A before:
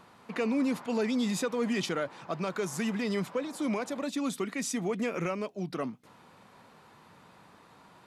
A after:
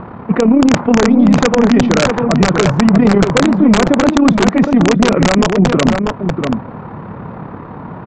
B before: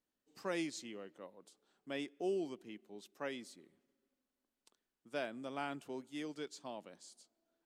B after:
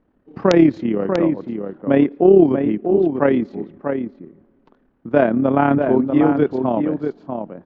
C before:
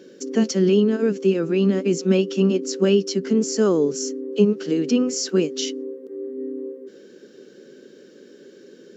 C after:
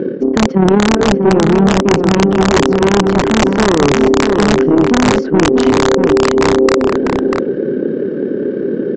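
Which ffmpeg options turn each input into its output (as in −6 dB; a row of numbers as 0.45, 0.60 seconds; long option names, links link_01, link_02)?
-filter_complex "[0:a]lowpass=1600,aemphasis=mode=reproduction:type=riaa,aeval=exprs='(tanh(5.01*val(0)+0.3)-tanh(0.3))/5.01':channel_layout=same,areverse,acompressor=threshold=-30dB:ratio=12,areverse,lowshelf=frequency=75:gain=-11,tremolo=f=35:d=0.571,aresample=16000,aeval=exprs='(mod(26.6*val(0)+1,2)-1)/26.6':channel_layout=same,aresample=44100,asplit=2[link_01][link_02];[link_02]adelay=641.4,volume=-6dB,highshelf=frequency=4000:gain=-14.4[link_03];[link_01][link_03]amix=inputs=2:normalize=0,alimiter=level_in=28.5dB:limit=-1dB:release=50:level=0:latency=1,volume=-1dB"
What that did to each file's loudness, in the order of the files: +20.5, +26.0, +9.0 LU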